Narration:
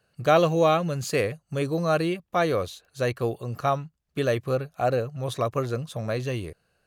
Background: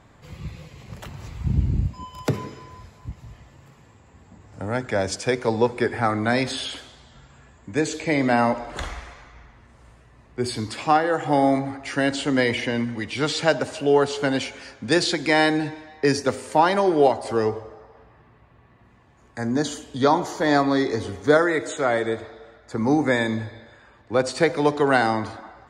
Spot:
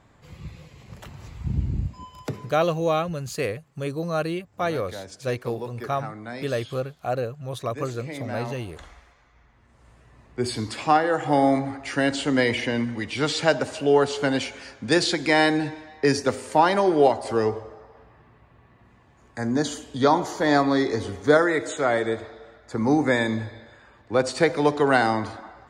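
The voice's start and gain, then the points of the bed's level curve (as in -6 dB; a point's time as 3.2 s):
2.25 s, -2.5 dB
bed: 2.05 s -4 dB
2.73 s -14.5 dB
9.15 s -14.5 dB
10.1 s -0.5 dB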